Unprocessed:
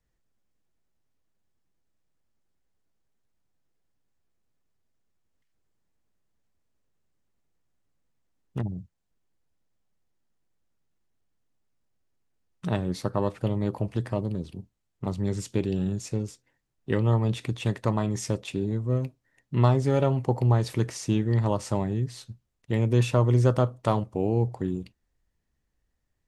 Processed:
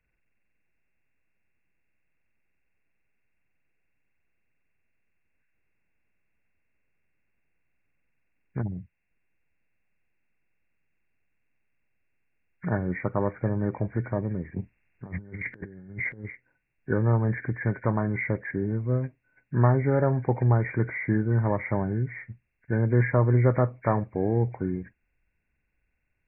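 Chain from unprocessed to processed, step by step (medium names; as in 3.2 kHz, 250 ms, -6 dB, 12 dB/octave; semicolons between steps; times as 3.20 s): knee-point frequency compression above 1.4 kHz 4:1; 14.56–16.25 s: compressor with a negative ratio -35 dBFS, ratio -0.5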